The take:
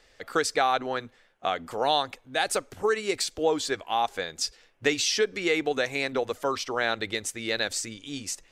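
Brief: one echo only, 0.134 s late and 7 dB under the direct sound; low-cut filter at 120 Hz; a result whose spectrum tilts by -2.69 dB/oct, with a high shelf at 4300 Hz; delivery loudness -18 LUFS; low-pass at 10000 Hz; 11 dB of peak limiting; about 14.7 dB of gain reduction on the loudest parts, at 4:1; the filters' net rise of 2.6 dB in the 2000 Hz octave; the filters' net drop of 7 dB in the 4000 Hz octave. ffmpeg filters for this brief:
-af "highpass=120,lowpass=10k,equalizer=f=2k:t=o:g=6,equalizer=f=4k:t=o:g=-7.5,highshelf=f=4.3k:g=-5.5,acompressor=threshold=-37dB:ratio=4,alimiter=level_in=5.5dB:limit=-24dB:level=0:latency=1,volume=-5.5dB,aecho=1:1:134:0.447,volume=23dB"

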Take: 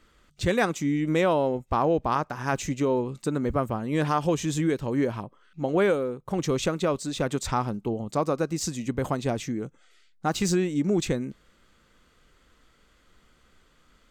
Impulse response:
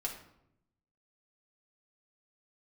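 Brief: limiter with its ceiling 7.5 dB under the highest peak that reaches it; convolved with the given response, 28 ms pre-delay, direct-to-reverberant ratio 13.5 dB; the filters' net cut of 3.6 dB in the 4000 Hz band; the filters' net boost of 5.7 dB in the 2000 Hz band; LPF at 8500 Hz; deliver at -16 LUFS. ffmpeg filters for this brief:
-filter_complex "[0:a]lowpass=8.5k,equalizer=f=2k:t=o:g=9,equalizer=f=4k:t=o:g=-7.5,alimiter=limit=-15dB:level=0:latency=1,asplit=2[a][b];[1:a]atrim=start_sample=2205,adelay=28[c];[b][c]afir=irnorm=-1:irlink=0,volume=-15dB[d];[a][d]amix=inputs=2:normalize=0,volume=11dB"

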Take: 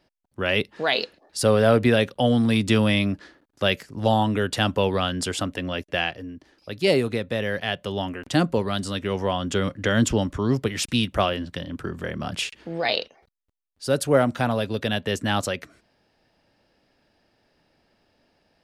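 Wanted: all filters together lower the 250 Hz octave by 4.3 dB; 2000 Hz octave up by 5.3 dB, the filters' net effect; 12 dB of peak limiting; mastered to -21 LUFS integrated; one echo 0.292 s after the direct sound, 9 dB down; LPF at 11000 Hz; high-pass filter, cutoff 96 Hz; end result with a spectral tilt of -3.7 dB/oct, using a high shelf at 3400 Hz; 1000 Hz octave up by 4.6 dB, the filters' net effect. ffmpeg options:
-af "highpass=96,lowpass=11k,equalizer=f=250:t=o:g=-5.5,equalizer=f=1k:t=o:g=5.5,equalizer=f=2k:t=o:g=3.5,highshelf=f=3.4k:g=5.5,alimiter=limit=-14.5dB:level=0:latency=1,aecho=1:1:292:0.355,volume=5.5dB"

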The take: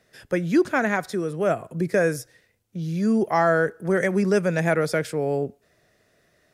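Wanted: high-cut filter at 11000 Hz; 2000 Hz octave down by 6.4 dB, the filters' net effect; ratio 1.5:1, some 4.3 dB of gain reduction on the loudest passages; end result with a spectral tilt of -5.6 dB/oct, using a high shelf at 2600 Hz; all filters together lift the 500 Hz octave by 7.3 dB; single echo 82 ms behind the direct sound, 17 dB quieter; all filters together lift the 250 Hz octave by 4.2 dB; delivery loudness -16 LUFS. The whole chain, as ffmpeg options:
-af "lowpass=11k,equalizer=f=250:t=o:g=3,equalizer=f=500:t=o:g=9,equalizer=f=2k:t=o:g=-6.5,highshelf=f=2.6k:g=-8.5,acompressor=threshold=-21dB:ratio=1.5,aecho=1:1:82:0.141,volume=5.5dB"

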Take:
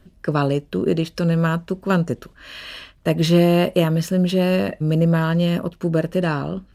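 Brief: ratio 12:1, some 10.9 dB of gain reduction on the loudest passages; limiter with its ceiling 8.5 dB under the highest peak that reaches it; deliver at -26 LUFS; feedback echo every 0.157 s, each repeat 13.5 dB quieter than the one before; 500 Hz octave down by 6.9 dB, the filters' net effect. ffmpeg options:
-af "equalizer=f=500:t=o:g=-9,acompressor=threshold=-25dB:ratio=12,alimiter=limit=-23dB:level=0:latency=1,aecho=1:1:157|314:0.211|0.0444,volume=5.5dB"

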